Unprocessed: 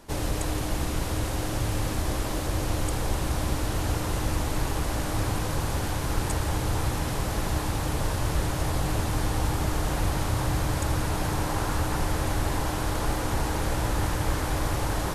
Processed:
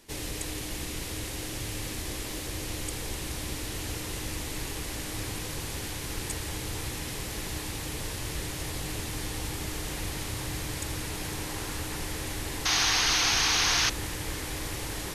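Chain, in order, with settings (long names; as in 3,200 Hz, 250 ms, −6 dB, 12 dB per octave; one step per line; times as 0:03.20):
flat-topped bell 930 Hz −9 dB
sound drawn into the spectrogram noise, 0:12.65–0:13.90, 670–6,700 Hz −25 dBFS
low-shelf EQ 410 Hz −10.5 dB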